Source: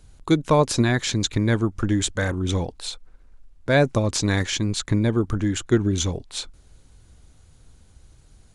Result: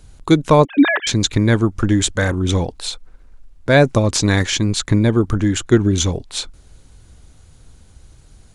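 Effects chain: 0.65–1.07 s: formants replaced by sine waves; trim +6 dB

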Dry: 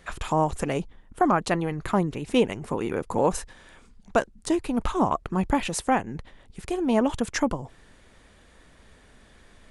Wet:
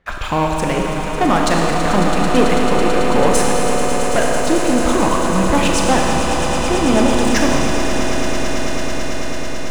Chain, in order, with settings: reverb removal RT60 1.6 s; level-controlled noise filter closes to 2.1 kHz, open at -19 dBFS; treble shelf 4.4 kHz +7.5 dB; waveshaping leveller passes 3; reverse; upward compressor, threshold -18 dBFS; reverse; echo with a slow build-up 110 ms, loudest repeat 8, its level -11 dB; Schroeder reverb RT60 3.3 s, combs from 28 ms, DRR -0.5 dB; trim -3 dB

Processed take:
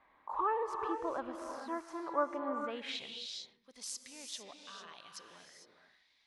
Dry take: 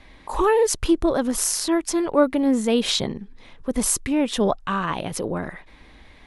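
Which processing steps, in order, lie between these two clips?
tilt EQ -1.5 dB/octave; gated-style reverb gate 480 ms rising, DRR 4.5 dB; band-pass sweep 1.1 kHz -> 4.9 kHz, 2.60–3.30 s; trim -7 dB

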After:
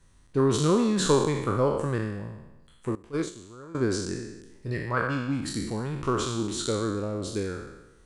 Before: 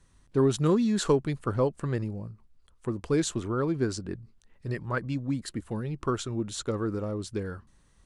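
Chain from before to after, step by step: spectral sustain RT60 1.01 s; 2.95–3.75 s: gate -21 dBFS, range -18 dB

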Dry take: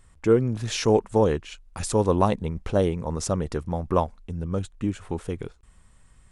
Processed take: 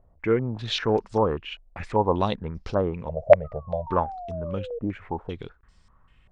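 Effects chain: 3.44–4.79 s: painted sound fall 460–1300 Hz -33 dBFS; 3.09–3.87 s: FFT filter 150 Hz 0 dB, 320 Hz -22 dB, 620 Hz +15 dB, 1 kHz -18 dB; step-sequenced low-pass 5.1 Hz 660–5000 Hz; trim -4 dB

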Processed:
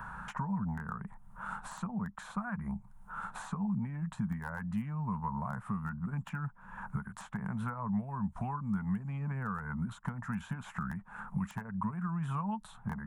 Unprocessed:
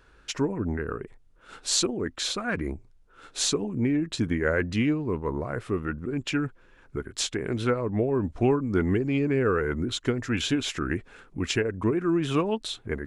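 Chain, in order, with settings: peaking EQ 1.8 kHz +14 dB 1.7 oct; compression 3:1, threshold -38 dBFS, peak gain reduction 19.5 dB; wavefolder -24 dBFS; FFT filter 100 Hz 0 dB, 200 Hz +14 dB, 320 Hz -25 dB, 530 Hz -12 dB, 910 Hz +8 dB, 2.1 kHz -20 dB, 4.9 kHz -21 dB, 9.4 kHz -2 dB; three bands compressed up and down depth 70%

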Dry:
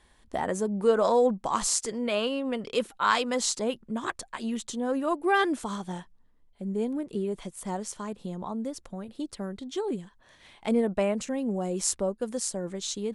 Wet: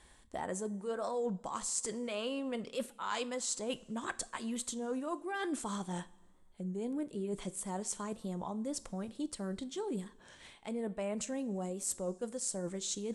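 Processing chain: peaking EQ 7.9 kHz +7.5 dB 0.55 oct; reverse; compression 6:1, threshold -35 dBFS, peak gain reduction 17 dB; reverse; two-slope reverb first 0.39 s, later 2 s, from -17 dB, DRR 13.5 dB; warped record 33 1/3 rpm, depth 100 cents

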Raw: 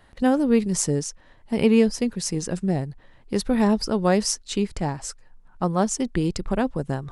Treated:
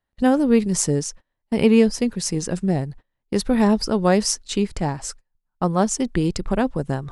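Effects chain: gate -40 dBFS, range -29 dB; trim +2.5 dB

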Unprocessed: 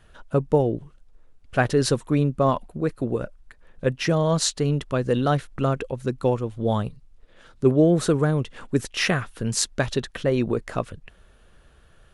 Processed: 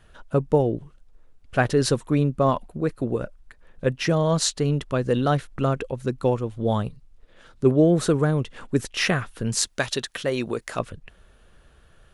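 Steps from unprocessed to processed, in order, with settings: 9.67–10.79 s: tilt EQ +2.5 dB/octave

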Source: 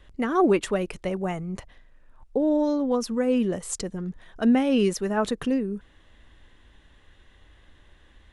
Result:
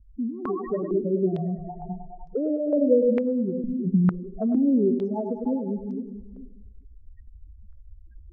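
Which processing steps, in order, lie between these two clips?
backward echo that repeats 215 ms, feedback 46%, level -10 dB; 2.79–3.76 s: bass shelf 290 Hz +8 dB; loudest bins only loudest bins 4; compression 4:1, threshold -35 dBFS, peak gain reduction 16.5 dB; distance through air 260 m; thinning echo 102 ms, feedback 68%, high-pass 430 Hz, level -6 dB; level rider gain up to 9 dB; step-sequenced low-pass 2.2 Hz 210–5500 Hz

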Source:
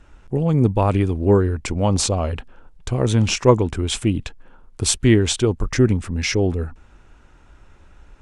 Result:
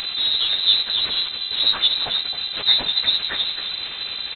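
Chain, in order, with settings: one-bit delta coder 32 kbps, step -21.5 dBFS; plain phase-vocoder stretch 0.53×; on a send: delay 266 ms -10.5 dB; on the sum: mains buzz 400 Hz, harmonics 8, -36 dBFS -8 dB/octave; frequency inversion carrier 4 kHz

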